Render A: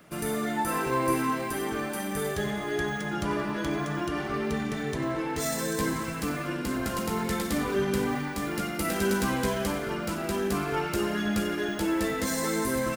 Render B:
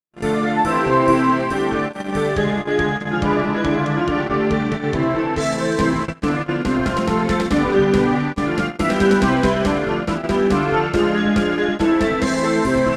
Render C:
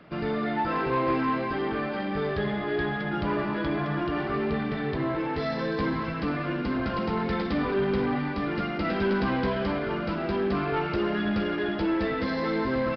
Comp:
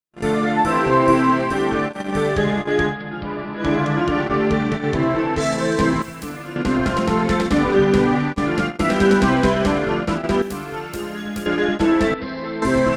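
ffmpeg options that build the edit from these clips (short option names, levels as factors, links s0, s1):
-filter_complex "[2:a]asplit=2[s0][s1];[0:a]asplit=2[s2][s3];[1:a]asplit=5[s4][s5][s6][s7][s8];[s4]atrim=end=2.96[s9];[s0]atrim=start=2.86:end=3.68[s10];[s5]atrim=start=3.58:end=6.022[s11];[s2]atrim=start=6.018:end=6.562[s12];[s6]atrim=start=6.558:end=10.422[s13];[s3]atrim=start=10.418:end=11.462[s14];[s7]atrim=start=11.458:end=12.142[s15];[s1]atrim=start=12.138:end=12.622[s16];[s8]atrim=start=12.618[s17];[s9][s10]acrossfade=d=0.1:c1=tri:c2=tri[s18];[s18][s11]acrossfade=d=0.1:c1=tri:c2=tri[s19];[s19][s12]acrossfade=d=0.004:c1=hsin:c2=hsin[s20];[s20][s13]acrossfade=d=0.004:c1=hsin:c2=hsin[s21];[s21][s14]acrossfade=d=0.004:c1=hsin:c2=hsin[s22];[s22][s15]acrossfade=d=0.004:c1=hsin:c2=hsin[s23];[s23][s16]acrossfade=d=0.004:c1=hsin:c2=hsin[s24];[s24][s17]acrossfade=d=0.004:c1=hsin:c2=hsin"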